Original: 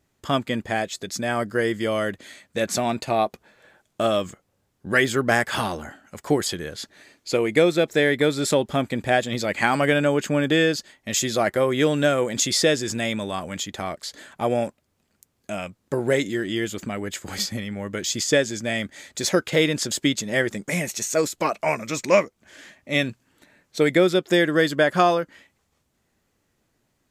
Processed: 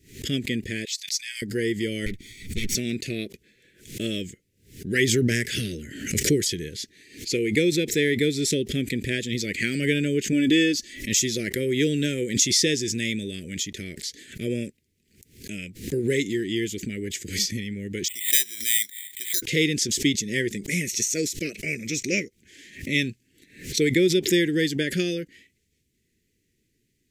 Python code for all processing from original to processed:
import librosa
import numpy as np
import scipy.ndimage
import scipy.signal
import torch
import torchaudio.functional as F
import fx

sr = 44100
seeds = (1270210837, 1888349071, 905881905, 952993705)

y = fx.chain(x, sr, fx.cheby2_highpass(hz=720.0, order=4, stop_db=50),
    fx.peak_eq(hz=4600.0, db=6.5, octaves=0.33), at=(0.85, 1.42))
y = fx.chain(y, sr, fx.lower_of_two(delay_ms=0.89),
    fx.low_shelf(hz=250.0, db=7.0), at=(2.06, 2.75))
y = fx.chain(y, sr, fx.peak_eq(hz=120.0, db=3.5, octaves=0.86),
    fx.pre_swell(db_per_s=50.0), at=(4.99, 6.69))
y = fx.chain(y, sr, fx.comb(ms=3.5, depth=0.55),
    fx.pre_swell(db_per_s=71.0), at=(10.32, 11.09))
y = fx.chain(y, sr, fx.bandpass_q(hz=2100.0, q=2.6),
    fx.resample_bad(factor=8, down='filtered', up='zero_stuff'), at=(18.08, 19.42))
y = scipy.signal.sosfilt(scipy.signal.cheby1(3, 1.0, [420.0, 2000.0], 'bandstop', fs=sr, output='sos'), y)
y = fx.dynamic_eq(y, sr, hz=5800.0, q=5.5, threshold_db=-49.0, ratio=4.0, max_db=8)
y = fx.pre_swell(y, sr, db_per_s=120.0)